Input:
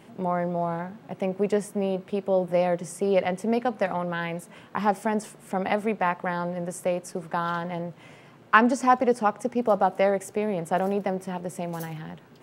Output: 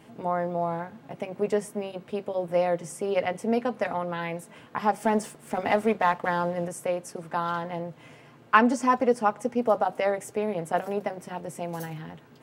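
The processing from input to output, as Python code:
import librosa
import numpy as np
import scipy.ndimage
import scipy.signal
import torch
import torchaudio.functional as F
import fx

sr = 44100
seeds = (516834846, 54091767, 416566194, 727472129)

y = fx.leveller(x, sr, passes=1, at=(5.0, 6.68))
y = fx.notch_comb(y, sr, f0_hz=190.0)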